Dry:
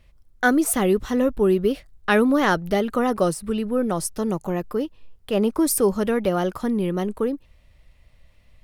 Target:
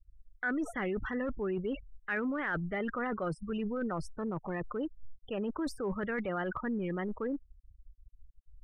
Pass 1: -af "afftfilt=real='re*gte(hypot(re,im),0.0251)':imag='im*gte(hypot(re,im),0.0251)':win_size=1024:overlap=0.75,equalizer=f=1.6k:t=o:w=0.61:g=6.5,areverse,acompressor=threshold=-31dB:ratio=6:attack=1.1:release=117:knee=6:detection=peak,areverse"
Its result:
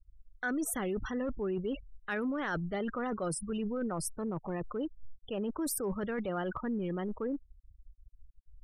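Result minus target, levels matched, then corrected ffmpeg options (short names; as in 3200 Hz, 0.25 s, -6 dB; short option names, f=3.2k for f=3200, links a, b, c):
2000 Hz band -3.5 dB
-af "afftfilt=real='re*gte(hypot(re,im),0.0251)':imag='im*gte(hypot(re,im),0.0251)':win_size=1024:overlap=0.75,lowpass=f=2.1k:t=q:w=2.5,equalizer=f=1.6k:t=o:w=0.61:g=6.5,areverse,acompressor=threshold=-31dB:ratio=6:attack=1.1:release=117:knee=6:detection=peak,areverse"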